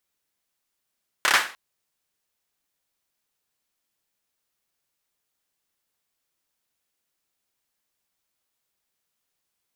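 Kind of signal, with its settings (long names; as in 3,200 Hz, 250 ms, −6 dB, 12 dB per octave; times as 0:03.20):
synth clap length 0.30 s, apart 29 ms, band 1,500 Hz, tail 0.36 s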